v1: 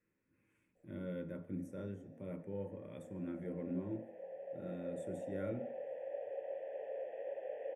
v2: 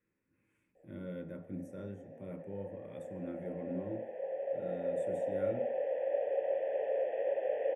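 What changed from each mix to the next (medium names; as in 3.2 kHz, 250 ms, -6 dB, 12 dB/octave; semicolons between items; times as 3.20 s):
background +10.0 dB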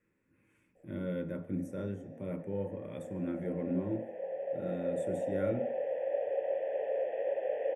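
speech +6.5 dB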